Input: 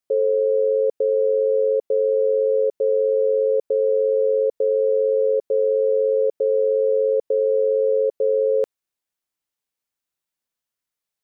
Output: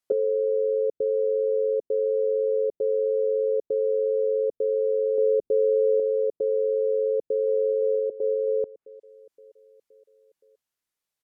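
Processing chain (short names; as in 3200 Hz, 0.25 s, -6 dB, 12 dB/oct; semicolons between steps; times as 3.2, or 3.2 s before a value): treble ducked by the level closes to 400 Hz, closed at -21 dBFS; 5.18–6 low shelf 300 Hz +10 dB; 6.95–7.43 echo throw 0.52 s, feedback 55%, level -10 dB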